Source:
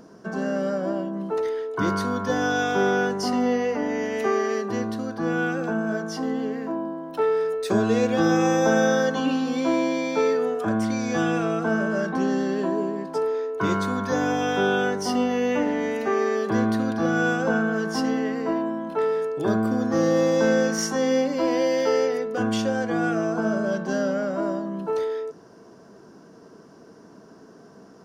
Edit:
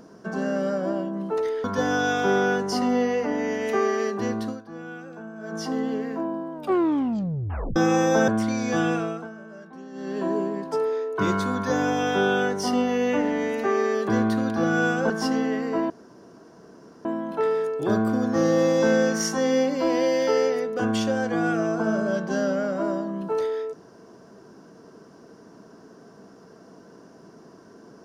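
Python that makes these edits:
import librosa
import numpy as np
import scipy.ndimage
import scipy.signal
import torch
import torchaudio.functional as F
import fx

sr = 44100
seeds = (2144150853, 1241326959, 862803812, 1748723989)

y = fx.edit(x, sr, fx.cut(start_s=1.64, length_s=0.51),
    fx.fade_down_up(start_s=5.0, length_s=1.06, db=-13.5, fade_s=0.17, curve='qua'),
    fx.tape_stop(start_s=7.04, length_s=1.23),
    fx.cut(start_s=8.79, length_s=1.91),
    fx.fade_down_up(start_s=11.32, length_s=1.42, db=-18.0, fade_s=0.4),
    fx.cut(start_s=17.52, length_s=0.31),
    fx.insert_room_tone(at_s=18.63, length_s=1.15), tone=tone)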